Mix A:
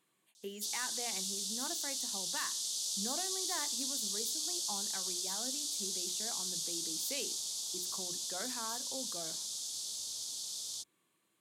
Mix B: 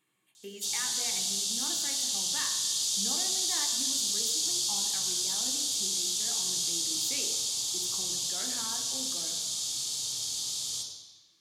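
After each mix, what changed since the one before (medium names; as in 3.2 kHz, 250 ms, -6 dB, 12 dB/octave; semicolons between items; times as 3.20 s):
background +6.0 dB; reverb: on, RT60 1.1 s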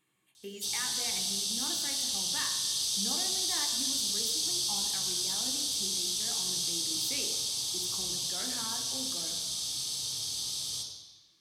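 background: add band-stop 7 kHz, Q 5.1; master: add bass shelf 96 Hz +9.5 dB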